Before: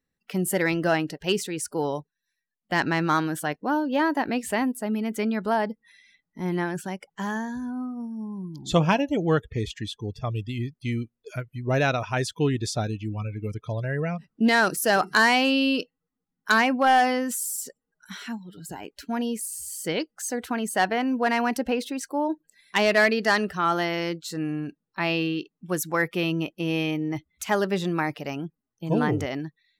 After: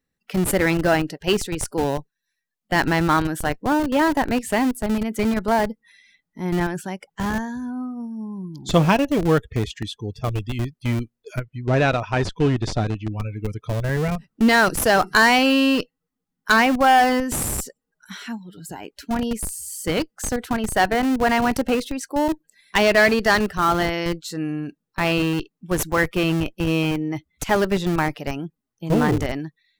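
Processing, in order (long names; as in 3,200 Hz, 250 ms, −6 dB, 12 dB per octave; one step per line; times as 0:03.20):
in parallel at −4 dB: comparator with hysteresis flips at −23.5 dBFS
0:11.40–0:13.12: on the sum: high-frequency loss of the air 90 metres
level +2.5 dB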